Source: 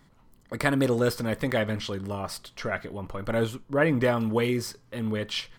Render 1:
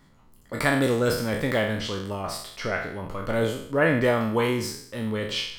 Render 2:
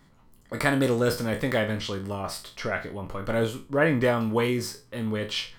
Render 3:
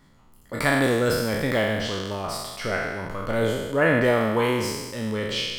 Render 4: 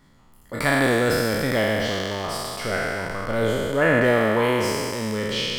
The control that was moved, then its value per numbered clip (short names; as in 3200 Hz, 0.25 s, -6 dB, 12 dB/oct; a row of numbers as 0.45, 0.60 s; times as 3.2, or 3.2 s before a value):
spectral trails, RT60: 0.64, 0.3, 1.37, 2.86 s